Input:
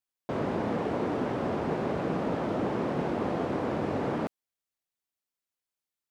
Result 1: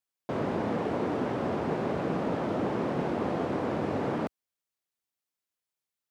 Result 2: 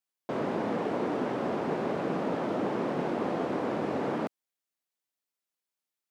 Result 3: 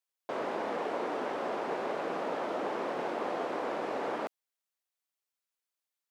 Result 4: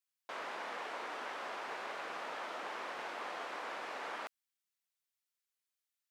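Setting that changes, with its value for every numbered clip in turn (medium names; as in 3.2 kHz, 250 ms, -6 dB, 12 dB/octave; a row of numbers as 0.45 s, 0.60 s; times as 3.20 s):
high-pass, cutoff frequency: 57 Hz, 170 Hz, 480 Hz, 1.3 kHz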